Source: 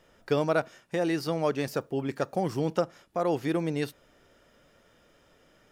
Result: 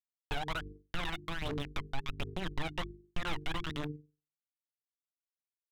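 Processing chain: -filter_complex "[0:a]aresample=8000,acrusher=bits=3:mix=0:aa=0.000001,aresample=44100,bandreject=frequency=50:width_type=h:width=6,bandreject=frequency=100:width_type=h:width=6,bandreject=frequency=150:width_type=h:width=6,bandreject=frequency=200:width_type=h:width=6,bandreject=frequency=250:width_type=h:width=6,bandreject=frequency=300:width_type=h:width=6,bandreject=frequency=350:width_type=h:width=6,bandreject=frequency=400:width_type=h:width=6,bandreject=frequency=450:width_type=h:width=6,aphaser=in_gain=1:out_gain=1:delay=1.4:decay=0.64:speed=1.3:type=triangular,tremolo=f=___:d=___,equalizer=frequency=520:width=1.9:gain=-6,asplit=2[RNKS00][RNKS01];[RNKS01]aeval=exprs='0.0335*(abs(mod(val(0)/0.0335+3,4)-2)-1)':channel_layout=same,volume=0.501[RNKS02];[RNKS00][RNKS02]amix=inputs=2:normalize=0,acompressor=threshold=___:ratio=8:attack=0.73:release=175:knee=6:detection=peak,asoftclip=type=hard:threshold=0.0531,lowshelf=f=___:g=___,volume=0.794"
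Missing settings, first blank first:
21, 0.4, 0.0355, 83, 11.5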